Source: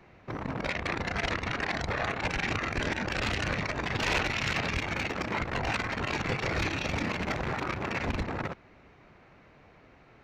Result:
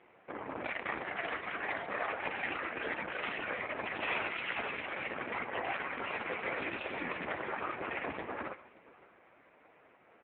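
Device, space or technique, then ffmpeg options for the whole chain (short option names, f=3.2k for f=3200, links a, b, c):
satellite phone: -filter_complex "[0:a]asettb=1/sr,asplit=3[a][b][c];[a]atrim=end=5.514[d];[b]atrim=start=5.51:end=6.76,asetpts=PTS-STARTPTS,afade=t=in:d=0.004:c=qsin,afade=t=out:st=1.246:d=0.004:c=qsin,adynamicequalizer=threshold=0.00282:dfrequency=130:dqfactor=6:tfrequency=130:tqfactor=6:attack=5:release=100:ratio=0.375:range=2.5:mode=cutabove:tftype=bell[e];[c]atrim=start=6.756[f];[d][e]acrossfade=d=0.004:c1=hsin:c2=qsin[g];[g][f]acrossfade=d=0.004:c1=qsin:c2=hsin,highpass=320,lowpass=3.1k,aecho=1:1:80|121:0.112|0.106,aecho=1:1:570:0.0794" -ar 8000 -c:a libopencore_amrnb -b:a 5900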